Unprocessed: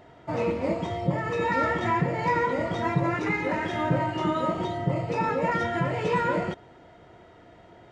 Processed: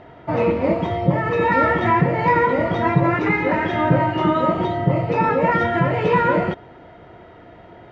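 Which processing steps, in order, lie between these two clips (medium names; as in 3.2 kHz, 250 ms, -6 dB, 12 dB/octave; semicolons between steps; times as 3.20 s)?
low-pass 3.1 kHz 12 dB/octave; trim +8 dB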